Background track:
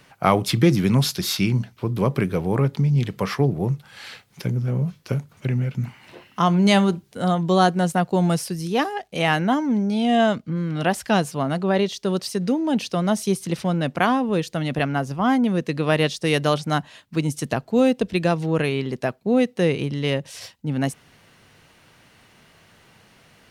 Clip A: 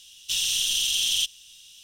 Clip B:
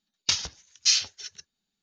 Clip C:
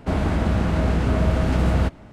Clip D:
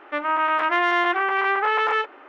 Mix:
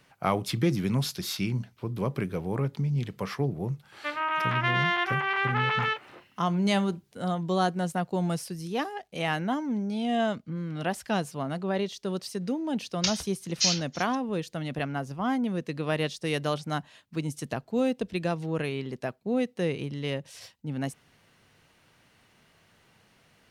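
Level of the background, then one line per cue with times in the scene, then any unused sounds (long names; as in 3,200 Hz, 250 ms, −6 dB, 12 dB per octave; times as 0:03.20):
background track −8.5 dB
0:03.92: mix in D −9.5 dB + parametric band 3,800 Hz +10 dB 2.1 octaves
0:12.75: mix in B −3.5 dB
not used: A, C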